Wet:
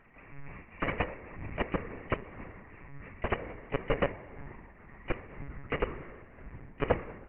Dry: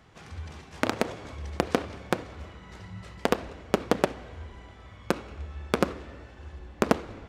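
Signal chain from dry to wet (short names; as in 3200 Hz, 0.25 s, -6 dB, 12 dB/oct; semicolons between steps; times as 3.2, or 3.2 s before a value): nonlinear frequency compression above 1800 Hz 4:1; FDN reverb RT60 2 s, low-frequency decay 0.85×, high-frequency decay 0.75×, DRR 16.5 dB; monotone LPC vocoder at 8 kHz 140 Hz; tremolo 2 Hz, depth 34%; gain -3 dB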